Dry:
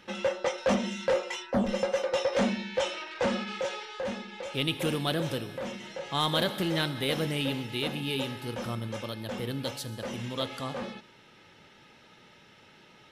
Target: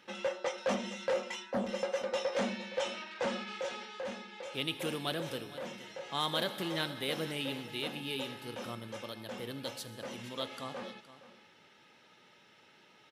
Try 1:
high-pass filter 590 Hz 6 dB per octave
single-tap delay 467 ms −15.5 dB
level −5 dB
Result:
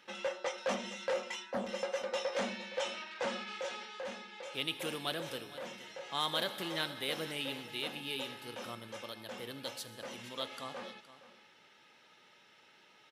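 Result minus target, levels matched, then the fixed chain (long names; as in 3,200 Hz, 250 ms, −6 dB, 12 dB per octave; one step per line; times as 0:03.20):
250 Hz band −3.5 dB
high-pass filter 260 Hz 6 dB per octave
single-tap delay 467 ms −15.5 dB
level −5 dB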